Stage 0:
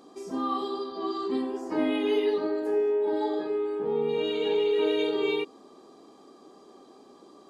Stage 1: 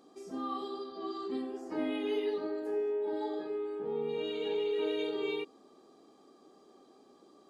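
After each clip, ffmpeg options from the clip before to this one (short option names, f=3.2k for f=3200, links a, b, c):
-af "bandreject=f=1k:w=10,volume=-7.5dB"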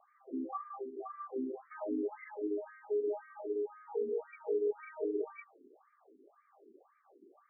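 -af "acrusher=bits=10:mix=0:aa=0.000001,afftfilt=real='re*between(b*sr/1024,300*pow(1700/300,0.5+0.5*sin(2*PI*1.9*pts/sr))/1.41,300*pow(1700/300,0.5+0.5*sin(2*PI*1.9*pts/sr))*1.41)':imag='im*between(b*sr/1024,300*pow(1700/300,0.5+0.5*sin(2*PI*1.9*pts/sr))/1.41,300*pow(1700/300,0.5+0.5*sin(2*PI*1.9*pts/sr))*1.41)':win_size=1024:overlap=0.75,volume=2dB"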